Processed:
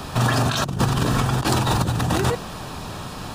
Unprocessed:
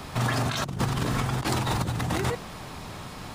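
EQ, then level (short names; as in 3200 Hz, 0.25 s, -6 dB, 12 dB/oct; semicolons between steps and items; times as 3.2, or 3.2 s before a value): notch 2100 Hz, Q 5; +6.5 dB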